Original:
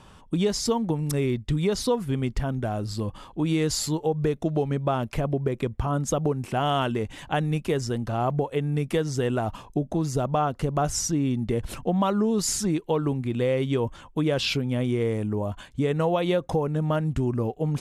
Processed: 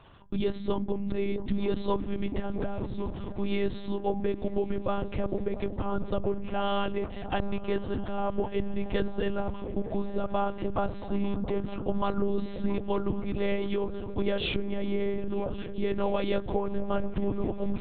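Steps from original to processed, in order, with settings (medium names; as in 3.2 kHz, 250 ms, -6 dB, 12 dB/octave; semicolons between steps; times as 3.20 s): de-hum 198.4 Hz, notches 10; on a send: delay with an opening low-pass 226 ms, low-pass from 200 Hz, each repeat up 1 oct, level -6 dB; on the sum: monotone LPC vocoder at 8 kHz 200 Hz; trim -4 dB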